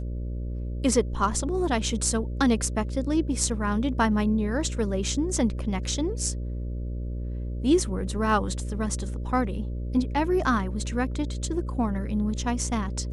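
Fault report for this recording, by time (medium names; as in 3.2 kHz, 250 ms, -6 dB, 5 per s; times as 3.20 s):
buzz 60 Hz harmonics 10 -31 dBFS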